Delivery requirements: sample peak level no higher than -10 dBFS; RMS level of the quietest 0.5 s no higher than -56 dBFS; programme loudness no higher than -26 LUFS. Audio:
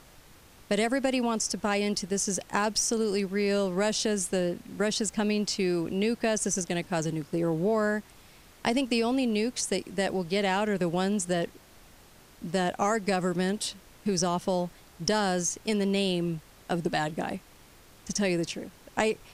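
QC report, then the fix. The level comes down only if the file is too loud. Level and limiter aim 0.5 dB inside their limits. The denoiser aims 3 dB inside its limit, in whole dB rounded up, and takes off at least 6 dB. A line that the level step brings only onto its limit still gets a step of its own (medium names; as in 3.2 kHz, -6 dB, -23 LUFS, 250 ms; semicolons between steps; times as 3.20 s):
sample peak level -9.5 dBFS: fail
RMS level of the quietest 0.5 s -54 dBFS: fail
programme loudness -28.5 LUFS: pass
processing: noise reduction 6 dB, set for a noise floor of -54 dBFS; peak limiter -10.5 dBFS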